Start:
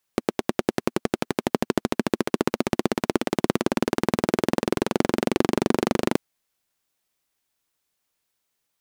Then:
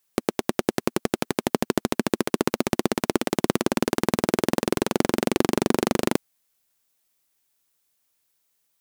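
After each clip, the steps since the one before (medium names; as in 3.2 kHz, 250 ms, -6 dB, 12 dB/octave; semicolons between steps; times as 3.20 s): treble shelf 6.4 kHz +8 dB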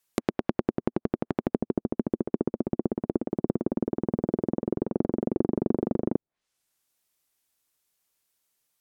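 low-pass that closes with the level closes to 480 Hz, closed at -22.5 dBFS; trim -2.5 dB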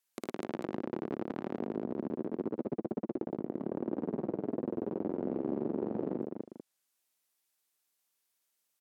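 on a send: multi-tap echo 56/75/115/250/443 ms -4/-18.5/-7.5/-5.5/-13.5 dB; on the sum: peak limiter -14 dBFS, peak gain reduction 7 dB; high-pass 250 Hz 6 dB/octave; trim -6.5 dB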